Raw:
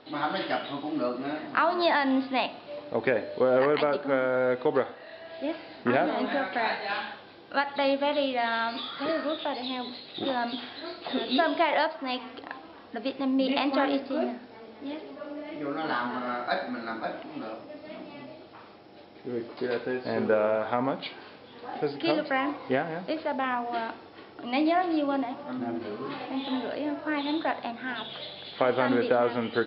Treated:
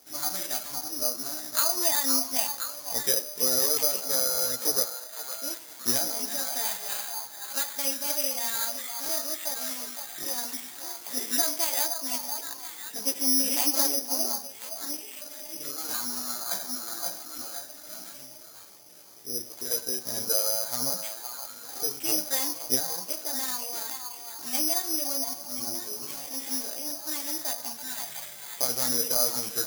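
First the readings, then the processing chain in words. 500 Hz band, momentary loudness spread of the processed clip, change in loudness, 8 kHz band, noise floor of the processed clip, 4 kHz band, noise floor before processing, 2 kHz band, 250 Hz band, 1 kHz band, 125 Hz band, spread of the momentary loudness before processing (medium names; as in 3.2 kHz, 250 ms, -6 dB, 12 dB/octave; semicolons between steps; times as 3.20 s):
-10.0 dB, 13 LU, +2.0 dB, no reading, -45 dBFS, +5.0 dB, -49 dBFS, -9.0 dB, -10.0 dB, -9.5 dB, -7.5 dB, 15 LU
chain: chorus voices 4, 0.83 Hz, delay 16 ms, depth 1.2 ms; repeats whose band climbs or falls 515 ms, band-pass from 950 Hz, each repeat 0.7 oct, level -4 dB; careless resampling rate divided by 8×, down none, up zero stuff; trim -8 dB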